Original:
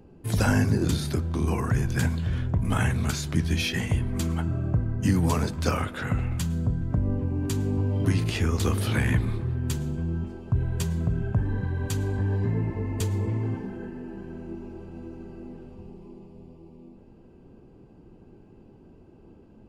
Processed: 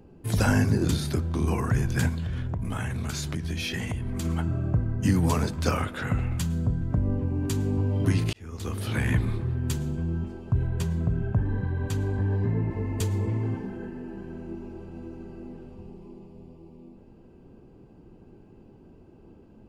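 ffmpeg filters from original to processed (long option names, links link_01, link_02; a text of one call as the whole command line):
ffmpeg -i in.wav -filter_complex "[0:a]asettb=1/sr,asplit=3[link_01][link_02][link_03];[link_01]atrim=end=2.094[link_04];[link_02]atrim=start=2.09:end=4.25,asetpts=PTS-STARTPTS,afade=type=in:duration=0.004:curve=qsin,afade=type=out:start_time=2.156:duration=0.004:curve=qsin,acompressor=threshold=-26dB:ratio=6:attack=3.2:release=140:knee=1:detection=peak[link_05];[link_03]atrim=start=4.246[link_06];[link_04][link_05]acrossfade=duration=0.004:curve1=hsin:curve2=qsin[link_07];[link_07][link_06]acrossfade=duration=0.004:curve1=qsin:curve2=hsin,asettb=1/sr,asplit=3[link_08][link_09][link_10];[link_08]atrim=end=10.674[link_11];[link_09]atrim=start=10.67:end=12.71,asetpts=PTS-STARTPTS,afade=type=in:duration=0.004:curve=qsin,afade=type=out:start_time=2.036:duration=0.004:curve=qsin,highshelf=frequency=3400:gain=-7[link_12];[link_10]atrim=start=12.706[link_13];[link_11][link_12]acrossfade=duration=0.004:curve1=hsin:curve2=qsin[link_14];[link_14][link_13]acrossfade=duration=0.004:curve1=qsin:curve2=hsin,asplit=2[link_15][link_16];[link_15]atrim=end=8.33,asetpts=PTS-STARTPTS,afade=type=out:start_time=8.326:duration=0.004:curve=hsin[link_17];[link_16]atrim=start=8.33,asetpts=PTS-STARTPTS,afade=type=in:duration=0.87[link_18];[link_17][link_18]concat=n=2:v=0:a=1" out.wav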